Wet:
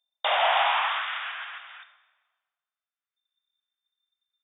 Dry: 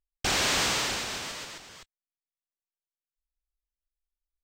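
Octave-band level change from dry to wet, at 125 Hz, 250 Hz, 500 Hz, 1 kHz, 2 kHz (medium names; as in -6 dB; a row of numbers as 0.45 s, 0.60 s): under -40 dB, under -30 dB, +5.0 dB, +10.0 dB, +3.5 dB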